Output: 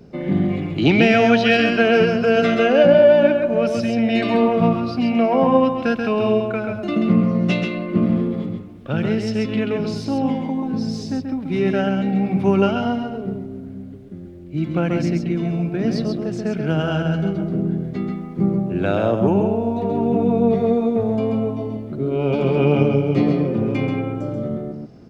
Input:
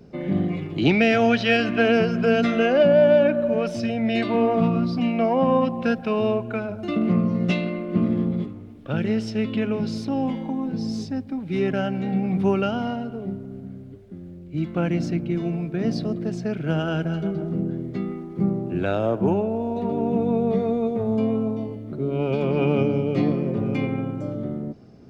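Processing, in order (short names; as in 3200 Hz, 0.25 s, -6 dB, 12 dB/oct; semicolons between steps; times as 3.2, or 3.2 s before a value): echo 0.134 s -5 dB; gain +3 dB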